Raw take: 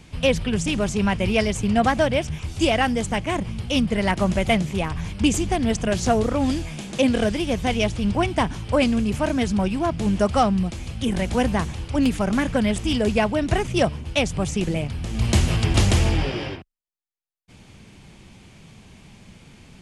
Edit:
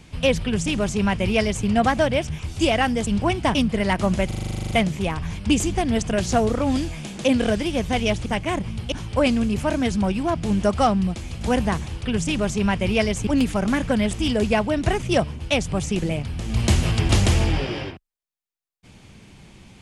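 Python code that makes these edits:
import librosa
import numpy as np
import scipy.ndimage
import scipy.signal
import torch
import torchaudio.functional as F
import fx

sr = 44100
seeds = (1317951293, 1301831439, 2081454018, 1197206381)

y = fx.edit(x, sr, fx.duplicate(start_s=0.44, length_s=1.22, to_s=11.92),
    fx.swap(start_s=3.07, length_s=0.66, other_s=8.0, other_length_s=0.48),
    fx.stutter(start_s=4.45, slice_s=0.04, count=12),
    fx.cut(start_s=10.97, length_s=0.31), tone=tone)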